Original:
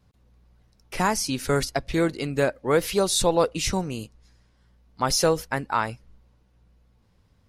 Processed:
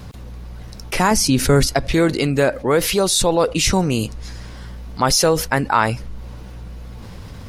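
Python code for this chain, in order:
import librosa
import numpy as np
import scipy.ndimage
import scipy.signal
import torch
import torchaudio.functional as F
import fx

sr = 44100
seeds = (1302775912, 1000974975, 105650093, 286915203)

y = fx.rider(x, sr, range_db=10, speed_s=0.5)
y = fx.low_shelf(y, sr, hz=410.0, db=8.5, at=(1.11, 1.67))
y = fx.env_flatten(y, sr, amount_pct=50)
y = y * librosa.db_to_amplitude(2.5)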